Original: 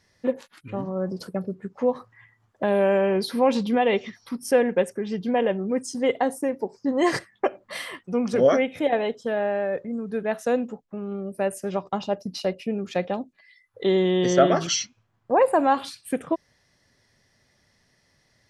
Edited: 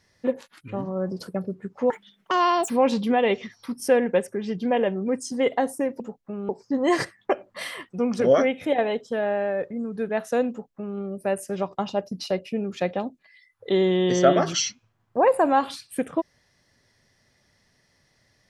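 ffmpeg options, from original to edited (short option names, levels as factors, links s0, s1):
-filter_complex "[0:a]asplit=5[s0][s1][s2][s3][s4];[s0]atrim=end=1.904[s5];[s1]atrim=start=1.9:end=3.33,asetpts=PTS-STARTPTS,asetrate=78939,aresample=44100[s6];[s2]atrim=start=3.326:end=6.632[s7];[s3]atrim=start=10.638:end=11.132[s8];[s4]atrim=start=6.628[s9];[s5][s6]acrossfade=d=0.004:c1=hsin:c2=hsin[s10];[s10][s7]acrossfade=d=0.004:c1=hsin:c2=hsin[s11];[s11][s8]acrossfade=d=0.004:c1=hsin:c2=hsin[s12];[s12][s9]acrossfade=d=0.004:c1=hsin:c2=hsin"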